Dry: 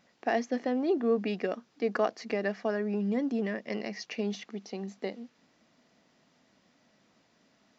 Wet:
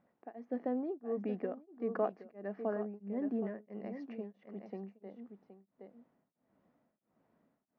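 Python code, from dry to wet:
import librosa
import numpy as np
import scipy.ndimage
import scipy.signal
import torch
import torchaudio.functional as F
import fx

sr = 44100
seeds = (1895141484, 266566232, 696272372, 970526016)

y = scipy.signal.sosfilt(scipy.signal.butter(2, 1100.0, 'lowpass', fs=sr, output='sos'), x)
y = y + 10.0 ** (-10.5 / 20.0) * np.pad(y, (int(770 * sr / 1000.0), 0))[:len(y)]
y = y * np.abs(np.cos(np.pi * 1.5 * np.arange(len(y)) / sr))
y = y * librosa.db_to_amplitude(-4.5)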